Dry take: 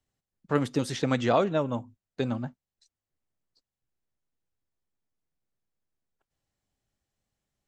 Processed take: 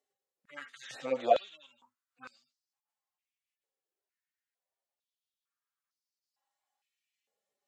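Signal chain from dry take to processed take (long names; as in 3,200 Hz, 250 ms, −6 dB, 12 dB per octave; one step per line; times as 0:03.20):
harmonic-percussive split with one part muted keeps harmonic
harmonic generator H 2 −24 dB, 4 −44 dB, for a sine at −15.5 dBFS
high-pass on a step sequencer 2.2 Hz 450–4,800 Hz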